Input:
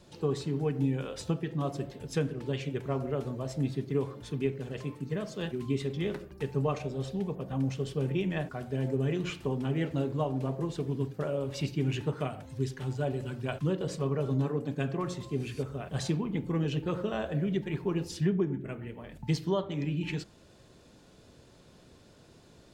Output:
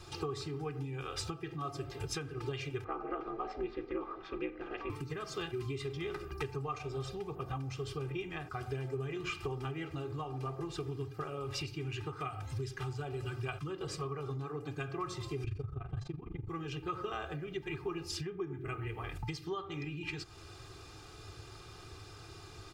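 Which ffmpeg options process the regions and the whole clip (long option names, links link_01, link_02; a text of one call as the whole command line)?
ffmpeg -i in.wav -filter_complex "[0:a]asettb=1/sr,asplit=3[link_01][link_02][link_03];[link_01]atrim=end=2.844[link_04];[link_02]atrim=start=2.84:end=4.9,asetpts=PTS-STARTPTS,afade=type=in:duration=0.004:curve=qsin,afade=type=out:start_time=2.056:duration=0.004:curve=qsin,aeval=exprs='val(0)*sin(2*PI*100*n/s)':channel_layout=same,lowpass=frequency=5700:width=0.5412,lowpass=frequency=5700:width=1.3066,acrossover=split=240 2600:gain=0.126 1 0.126[link_05][link_06][link_07];[link_05][link_06][link_07]amix=inputs=3:normalize=0[link_08];[link_03]atrim=start=4.896[link_09];[link_04][link_08]acrossfade=duration=0.004:curve1=hsin:curve2=qsin[link_10];[link_10][link_09]acrossfade=duration=0.004:curve1=qsin:curve2=hsin,asettb=1/sr,asplit=3[link_11][link_12][link_13];[link_11]atrim=end=15.444[link_14];[link_12]atrim=start=15.44:end=16.49,asetpts=PTS-STARTPTS,afade=type=in:duration=0.004:curve=qsin,afade=type=out:start_time=1.046:duration=0.004:curve=qsin,aemphasis=mode=reproduction:type=riaa,tremolo=f=24:d=0.889[link_15];[link_13]atrim=start=16.486[link_16];[link_14][link_15]acrossfade=duration=0.004:curve1=hsin:curve2=qsin[link_17];[link_17][link_16]acrossfade=duration=0.004:curve1=qsin:curve2=hsin,equalizer=frequency=100:width_type=o:width=0.33:gain=8,equalizer=frequency=250:width_type=o:width=0.33:gain=-11,equalizer=frequency=500:width_type=o:width=0.33:gain=-9,equalizer=frequency=1250:width_type=o:width=0.33:gain=11,equalizer=frequency=2500:width_type=o:width=0.33:gain=5,equalizer=frequency=5000:width_type=o:width=0.33:gain=5,acompressor=threshold=-40dB:ratio=12,aecho=1:1:2.5:0.74,volume=4dB" out.wav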